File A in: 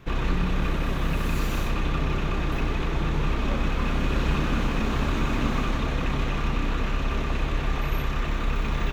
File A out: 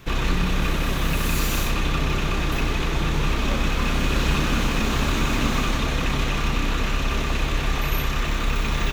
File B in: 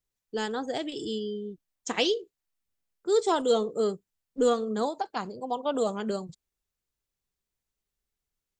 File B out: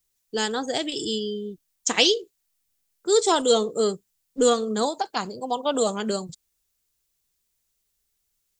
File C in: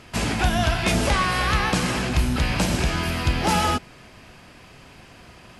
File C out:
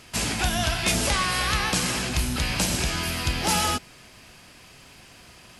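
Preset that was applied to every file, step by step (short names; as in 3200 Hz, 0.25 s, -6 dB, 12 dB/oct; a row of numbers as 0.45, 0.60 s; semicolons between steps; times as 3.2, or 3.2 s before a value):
high shelf 3300 Hz +12 dB; match loudness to -24 LUFS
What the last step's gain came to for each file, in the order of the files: +2.0, +3.5, -5.0 dB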